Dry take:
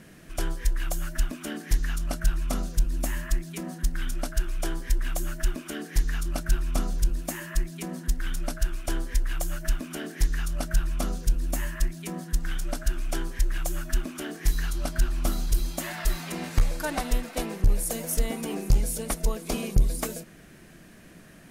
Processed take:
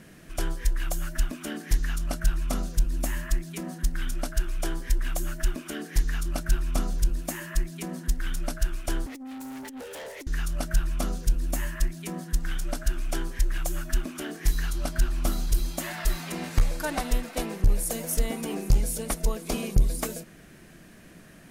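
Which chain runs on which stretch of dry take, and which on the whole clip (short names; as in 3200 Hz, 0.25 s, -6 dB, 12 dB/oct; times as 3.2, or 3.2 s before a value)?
9.06–10.27 frequency shift +230 Hz + negative-ratio compressor -28 dBFS, ratio -0.5 + tube stage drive 37 dB, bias 0.25
whole clip: dry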